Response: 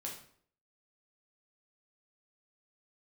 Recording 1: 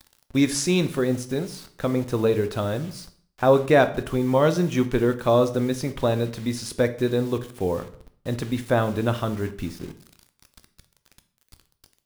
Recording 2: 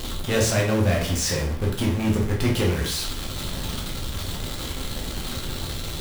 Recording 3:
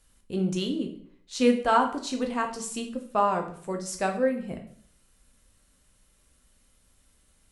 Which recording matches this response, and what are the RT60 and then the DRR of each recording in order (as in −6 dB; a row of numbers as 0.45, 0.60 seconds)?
2; 0.55, 0.55, 0.55 seconds; 9.5, −2.5, 3.5 decibels